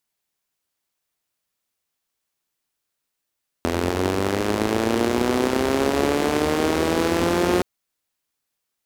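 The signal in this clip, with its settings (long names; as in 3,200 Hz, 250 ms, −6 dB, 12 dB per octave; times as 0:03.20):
pulse-train model of a four-cylinder engine, changing speed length 3.97 s, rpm 2,500, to 5,400, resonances 86/250/360 Hz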